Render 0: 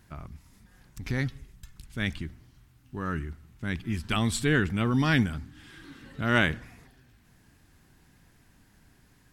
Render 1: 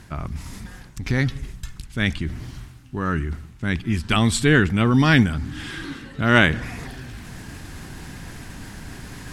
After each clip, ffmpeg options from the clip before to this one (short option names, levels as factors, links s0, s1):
-af "lowpass=11000,areverse,acompressor=mode=upward:threshold=0.0316:ratio=2.5,areverse,volume=2.51"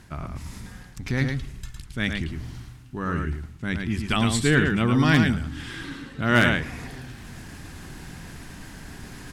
-filter_complex "[0:a]bandreject=f=50:t=h:w=6,bandreject=f=100:t=h:w=6,asplit=2[s0][s1];[s1]aecho=0:1:109:0.562[s2];[s0][s2]amix=inputs=2:normalize=0,aeval=exprs='0.631*(abs(mod(val(0)/0.631+3,4)-2)-1)':c=same,volume=0.631"